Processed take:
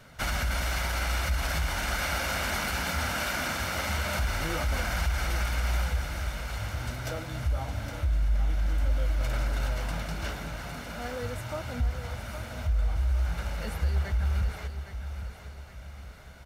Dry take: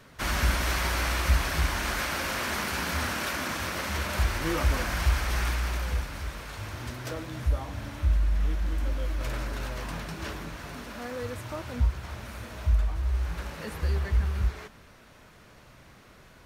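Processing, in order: comb 1.4 ms, depth 44%; peak limiter -20.5 dBFS, peak gain reduction 10.5 dB; feedback delay 813 ms, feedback 41%, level -10 dB

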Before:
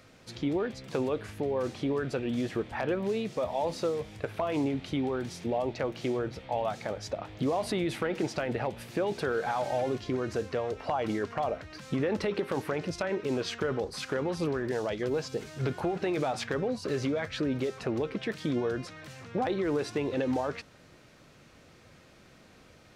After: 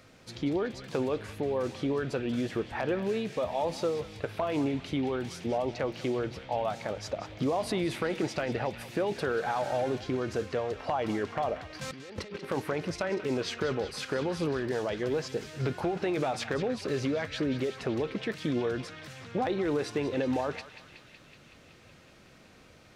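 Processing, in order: 11.81–12.45 s: compressor with a negative ratio -42 dBFS, ratio -1; band-passed feedback delay 187 ms, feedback 81%, band-pass 2.9 kHz, level -9.5 dB

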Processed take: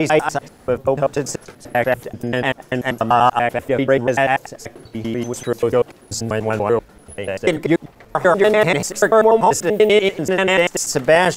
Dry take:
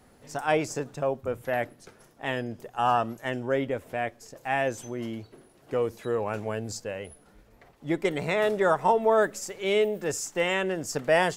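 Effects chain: slices played last to first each 97 ms, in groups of 7; loudness maximiser +13.5 dB; trim -2 dB

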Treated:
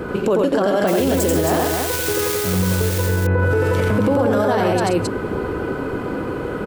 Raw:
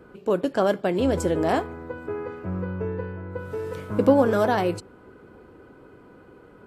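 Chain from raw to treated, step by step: 0.87–3.00 s: zero-crossing glitches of -19.5 dBFS; compression 3:1, threshold -33 dBFS, peak gain reduction 15.5 dB; loudspeakers at several distances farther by 30 m -3 dB, 45 m -10 dB, 92 m -5 dB; loudness maximiser +30.5 dB; trim -8.5 dB

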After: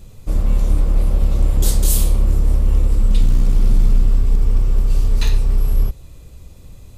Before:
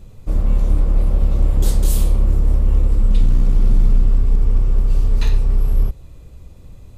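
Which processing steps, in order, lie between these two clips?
treble shelf 3 kHz +8.5 dB

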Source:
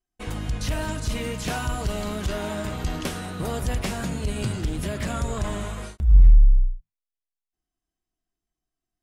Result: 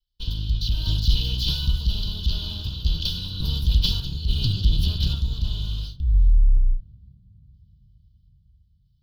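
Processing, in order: comb filter that takes the minimum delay 2 ms; bass shelf 96 Hz +9 dB; reverse; compression 6:1, threshold -18 dBFS, peak gain reduction 15.5 dB; reverse; FFT filter 180 Hz 0 dB, 520 Hz -22 dB, 950 Hz -19 dB, 1.4 kHz -17 dB, 2.1 kHz -29 dB, 3.1 kHz +10 dB, 4.5 kHz +12 dB, 8.1 kHz -24 dB, 13 kHz -2 dB; random-step tremolo; on a send: reverberation RT60 3.6 s, pre-delay 3 ms, DRR 16.5 dB; on the sum: trim +5.5 dB

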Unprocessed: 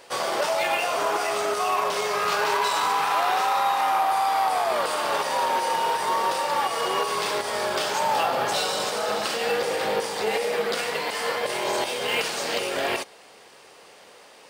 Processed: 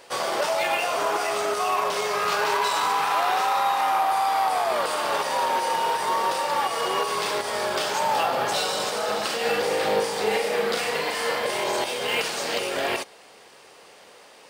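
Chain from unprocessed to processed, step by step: 9.41–11.64 s: doubling 39 ms -5 dB

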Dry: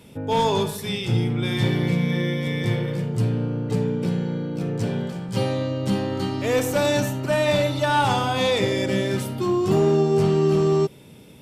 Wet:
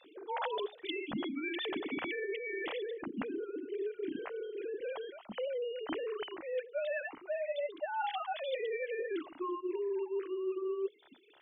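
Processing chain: formants replaced by sine waves; hum notches 60/120/180/240/300/360/420 Hz; reverb removal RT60 1 s; reverse; compression 10:1, threshold -30 dBFS, peak gain reduction 17.5 dB; reverse; trim -3 dB; MP3 48 kbps 32 kHz

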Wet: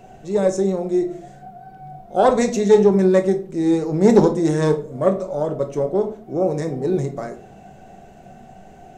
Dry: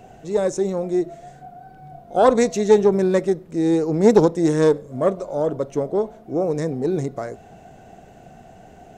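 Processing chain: simulated room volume 340 m³, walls furnished, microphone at 1.1 m; trim -1 dB

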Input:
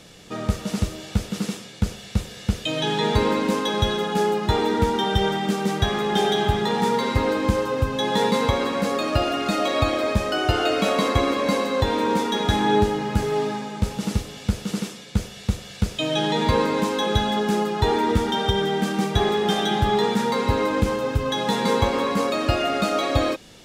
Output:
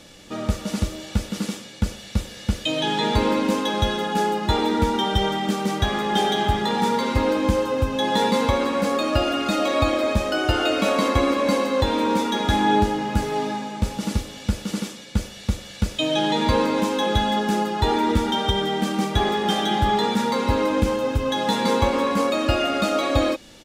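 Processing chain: comb 3.5 ms, depth 40%

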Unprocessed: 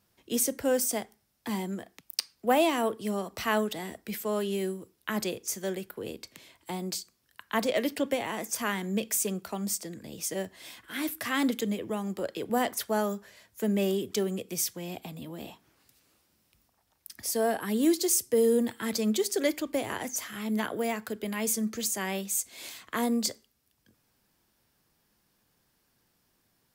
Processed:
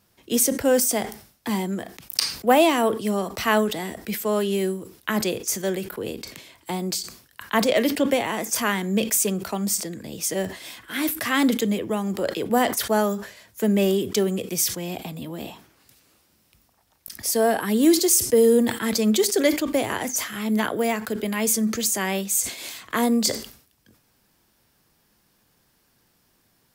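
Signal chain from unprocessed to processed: decay stretcher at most 110 dB/s; trim +7 dB

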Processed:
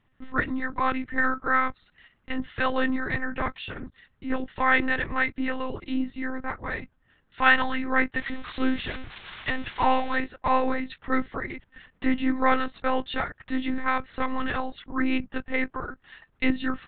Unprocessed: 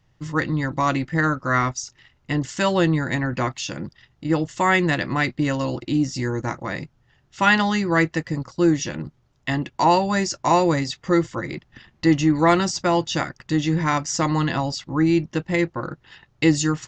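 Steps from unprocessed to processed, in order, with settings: 8.17–10.19 s: zero-crossing glitches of -13 dBFS; peaking EQ 1.6 kHz +6.5 dB 1.1 oct; monotone LPC vocoder at 8 kHz 260 Hz; trim -6 dB

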